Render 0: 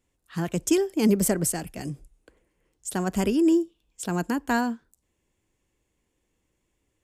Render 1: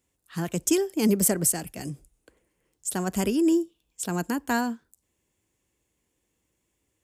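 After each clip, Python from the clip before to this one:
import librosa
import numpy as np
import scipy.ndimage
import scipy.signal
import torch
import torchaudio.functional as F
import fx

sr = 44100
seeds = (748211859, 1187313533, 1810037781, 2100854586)

y = scipy.signal.sosfilt(scipy.signal.butter(2, 51.0, 'highpass', fs=sr, output='sos'), x)
y = fx.high_shelf(y, sr, hz=6300.0, db=8.0)
y = y * librosa.db_to_amplitude(-1.5)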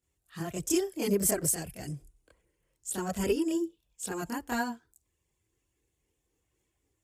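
y = fx.chorus_voices(x, sr, voices=6, hz=0.63, base_ms=26, depth_ms=1.6, mix_pct=65)
y = y * librosa.db_to_amplitude(-2.0)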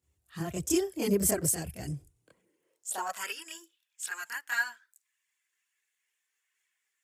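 y = fx.filter_sweep_highpass(x, sr, from_hz=73.0, to_hz=1700.0, start_s=2.0, end_s=3.33, q=2.7)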